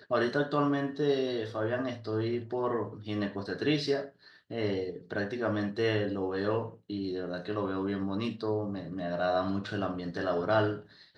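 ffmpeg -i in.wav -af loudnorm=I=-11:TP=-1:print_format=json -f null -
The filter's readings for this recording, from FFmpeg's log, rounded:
"input_i" : "-31.9",
"input_tp" : "-13.2",
"input_lra" : "1.3",
"input_thresh" : "-42.0",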